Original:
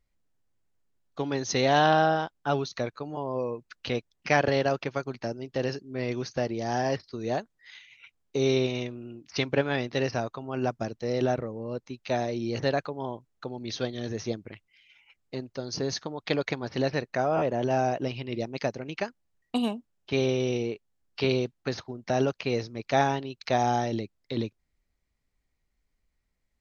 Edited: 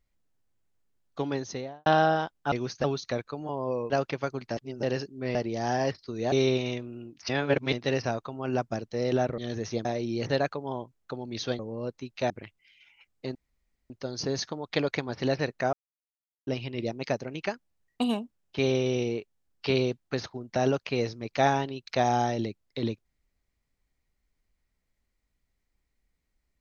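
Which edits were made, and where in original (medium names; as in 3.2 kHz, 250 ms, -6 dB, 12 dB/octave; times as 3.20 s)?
1.20–1.86 s: studio fade out
3.58–4.63 s: delete
5.30–5.56 s: reverse
6.08–6.40 s: move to 2.52 s
7.37–8.41 s: delete
9.38–9.82 s: reverse
11.47–12.18 s: swap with 13.92–14.39 s
15.44 s: insert room tone 0.55 s
17.27–18.01 s: mute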